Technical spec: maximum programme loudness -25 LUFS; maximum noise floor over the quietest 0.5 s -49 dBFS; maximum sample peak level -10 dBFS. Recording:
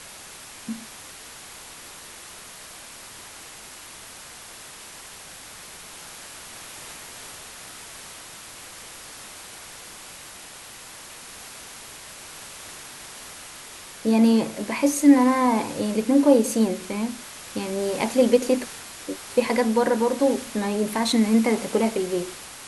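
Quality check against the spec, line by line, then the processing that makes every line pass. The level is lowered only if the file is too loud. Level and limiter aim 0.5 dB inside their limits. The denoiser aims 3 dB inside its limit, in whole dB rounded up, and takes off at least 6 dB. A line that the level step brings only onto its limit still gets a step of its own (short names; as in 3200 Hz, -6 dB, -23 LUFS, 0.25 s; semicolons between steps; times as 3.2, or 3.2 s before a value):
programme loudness -22.0 LUFS: fail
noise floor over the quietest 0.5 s -42 dBFS: fail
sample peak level -5.0 dBFS: fail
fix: denoiser 7 dB, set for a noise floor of -42 dBFS; gain -3.5 dB; limiter -10.5 dBFS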